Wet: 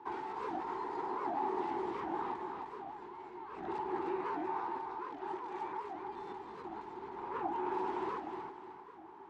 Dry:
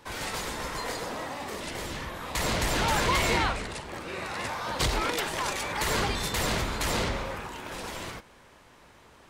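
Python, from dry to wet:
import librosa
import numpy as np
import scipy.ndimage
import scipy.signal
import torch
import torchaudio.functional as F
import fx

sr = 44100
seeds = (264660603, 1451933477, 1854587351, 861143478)

y = fx.over_compress(x, sr, threshold_db=-37.0, ratio=-1.0)
y = fx.double_bandpass(y, sr, hz=570.0, octaves=1.2)
y = fx.air_absorb(y, sr, metres=51.0)
y = fx.echo_feedback(y, sr, ms=307, feedback_pct=36, wet_db=-4.5)
y = fx.record_warp(y, sr, rpm=78.0, depth_cents=250.0)
y = y * 10.0 ** (4.0 / 20.0)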